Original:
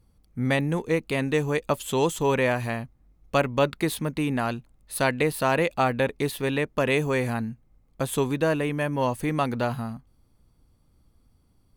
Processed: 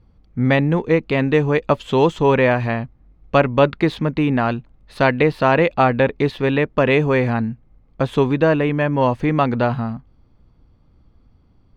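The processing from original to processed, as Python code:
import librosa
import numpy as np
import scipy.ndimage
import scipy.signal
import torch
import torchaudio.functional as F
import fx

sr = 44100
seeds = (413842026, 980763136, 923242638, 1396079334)

y = fx.air_absorb(x, sr, metres=220.0)
y = y * 10.0 ** (8.5 / 20.0)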